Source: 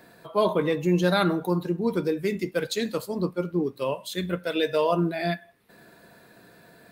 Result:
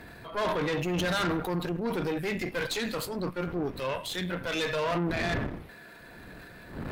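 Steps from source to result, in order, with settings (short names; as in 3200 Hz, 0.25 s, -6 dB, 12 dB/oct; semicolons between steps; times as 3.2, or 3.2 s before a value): wind noise 270 Hz -39 dBFS; bell 2100 Hz +9 dB 1.9 oct; in parallel at -2 dB: compressor, threshold -34 dBFS, peak gain reduction 19 dB; on the sum: transient shaper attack -3 dB, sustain +7 dB; tube stage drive 22 dB, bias 0.75; gain -2.5 dB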